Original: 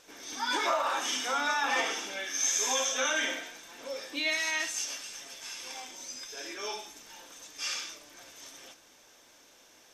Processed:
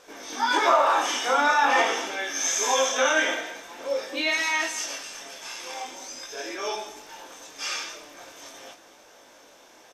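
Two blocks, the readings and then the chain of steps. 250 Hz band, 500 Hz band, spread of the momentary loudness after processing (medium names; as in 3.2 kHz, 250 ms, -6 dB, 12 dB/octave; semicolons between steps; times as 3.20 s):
+7.5 dB, +10.0 dB, 22 LU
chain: peaking EQ 670 Hz +8.5 dB 2.9 oct; chorus 0.45 Hz, delay 18 ms, depth 7.8 ms; echo from a far wall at 36 m, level -16 dB; trim +5 dB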